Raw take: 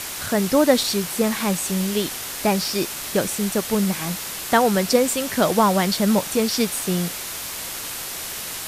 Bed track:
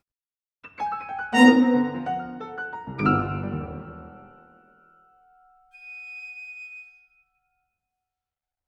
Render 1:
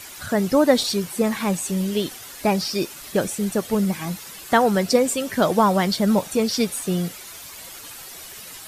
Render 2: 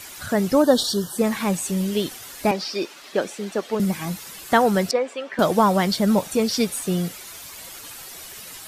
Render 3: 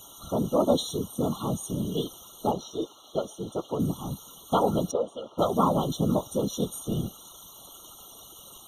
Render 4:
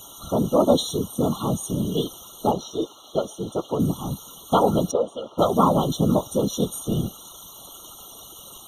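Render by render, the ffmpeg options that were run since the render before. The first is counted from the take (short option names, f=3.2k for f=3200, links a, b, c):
-af "afftdn=nr=11:nf=-31"
-filter_complex "[0:a]asplit=3[a][b][c];[a]afade=t=out:st=0.62:d=0.02[d];[b]asuperstop=centerf=2300:order=20:qfactor=2.2,afade=t=in:st=0.62:d=0.02,afade=t=out:st=1.17:d=0.02[e];[c]afade=t=in:st=1.17:d=0.02[f];[d][e][f]amix=inputs=3:normalize=0,asettb=1/sr,asplit=3[g][h][i];[g]atrim=end=2.514[j];[h]atrim=start=2.51:end=3.8,asetpts=PTS-STARTPTS,afade=t=in:d=0.004:c=qsin,afade=t=out:st=1.286:d=0.004:c=qsin,acrossover=split=240 5800:gain=0.0794 1 0.178[k][l][m];[k][l][m]amix=inputs=3:normalize=0[n];[i]atrim=start=3.796[o];[j][n]acrossfade=d=0.004:c1=hsin:c2=qsin[p];[p][o]acrossfade=d=0.004:c1=qsin:c2=hsin,asettb=1/sr,asplit=3[q][r][s];[q]atrim=end=4.914[t];[r]atrim=start=4.91:end=5.39,asetpts=PTS-STARTPTS,afade=t=in:d=0.004:c=qsin,afade=t=out:st=0.476:d=0.004:c=qsin,highpass=540,lowpass=2.4k[u];[s]atrim=start=5.386[v];[t][u]acrossfade=d=0.004:c1=hsin:c2=qsin[w];[w][v]acrossfade=d=0.004:c1=qsin:c2=hsin"
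-af "afftfilt=real='hypot(re,im)*cos(2*PI*random(0))':imag='hypot(re,im)*sin(2*PI*random(1))':win_size=512:overlap=0.75,afftfilt=real='re*eq(mod(floor(b*sr/1024/1400),2),0)':imag='im*eq(mod(floor(b*sr/1024/1400),2),0)':win_size=1024:overlap=0.75"
-af "volume=5dB"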